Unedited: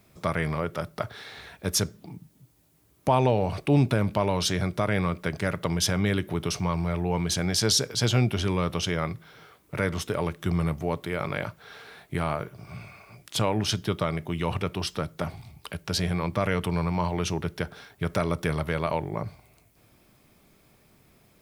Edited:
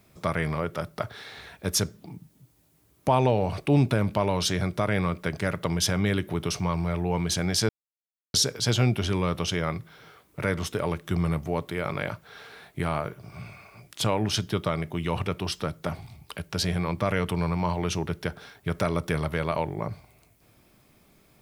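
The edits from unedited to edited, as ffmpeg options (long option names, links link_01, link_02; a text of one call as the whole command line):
ffmpeg -i in.wav -filter_complex "[0:a]asplit=2[link_01][link_02];[link_01]atrim=end=7.69,asetpts=PTS-STARTPTS,afade=type=out:start_time=7.686:duration=0.004:curve=hsin,apad=pad_dur=0.65[link_03];[link_02]atrim=start=7.69,asetpts=PTS-STARTPTS,afade=type=in:duration=0.004:curve=hsin[link_04];[link_03][link_04]concat=n=2:v=0:a=1" out.wav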